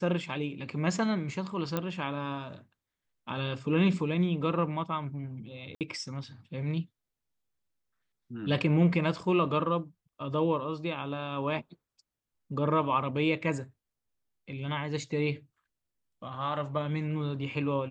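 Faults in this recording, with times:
1.77 pop -16 dBFS
5.75–5.81 gap 58 ms

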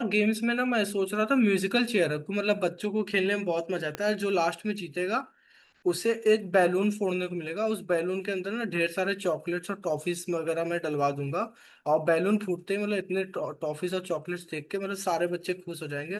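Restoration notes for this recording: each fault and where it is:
3.95 pop -17 dBFS

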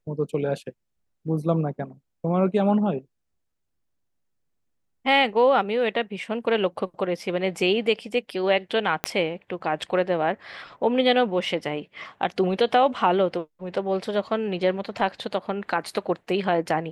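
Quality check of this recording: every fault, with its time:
9.04 pop -7 dBFS

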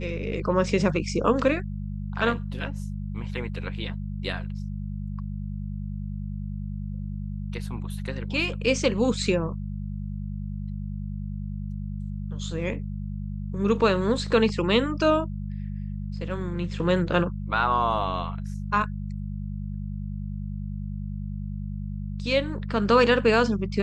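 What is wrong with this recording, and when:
hum 50 Hz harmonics 4 -32 dBFS

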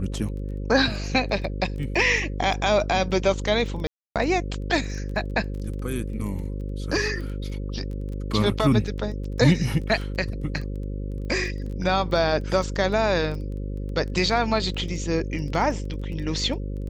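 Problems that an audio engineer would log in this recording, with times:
buzz 50 Hz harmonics 11 -30 dBFS
crackle 12/s -33 dBFS
3.87–4.16 gap 0.287 s

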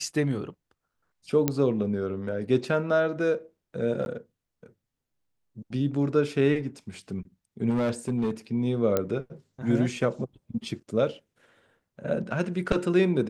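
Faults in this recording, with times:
1.48 pop -9 dBFS
4.05–4.06 gap 11 ms
7.69–8.31 clipped -22 dBFS
8.97 pop -11 dBFS

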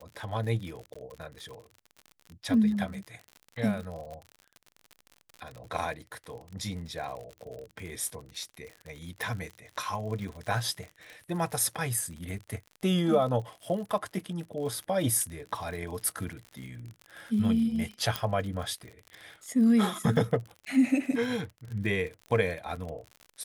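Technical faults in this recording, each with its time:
crackle 58/s -37 dBFS
0.94–0.95 gap 15 ms
9.22 pop
18.16 pop

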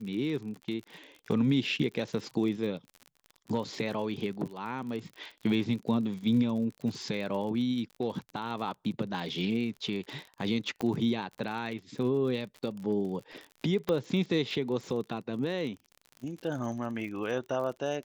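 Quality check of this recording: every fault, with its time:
crackle 46/s -38 dBFS
10.81 pop -20 dBFS
13.89 pop -16 dBFS

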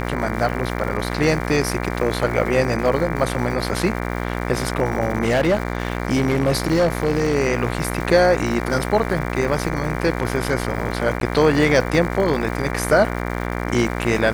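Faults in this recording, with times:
buzz 60 Hz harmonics 39 -25 dBFS
crackle 300/s -29 dBFS
5.25–7.36 clipped -13 dBFS
11.2–11.21 gap 12 ms

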